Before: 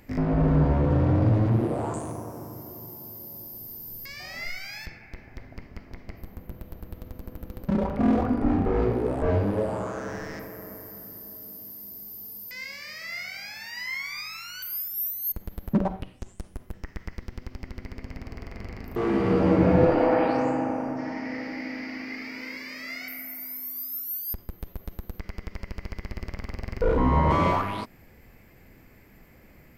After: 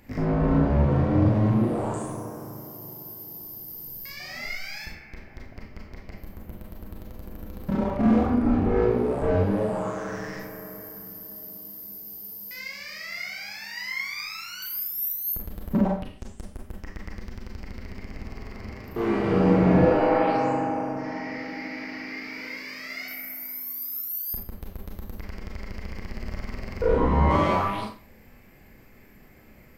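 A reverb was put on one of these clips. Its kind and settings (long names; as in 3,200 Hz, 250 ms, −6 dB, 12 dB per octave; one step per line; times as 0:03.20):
four-comb reverb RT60 0.34 s, combs from 29 ms, DRR −0.5 dB
level −2 dB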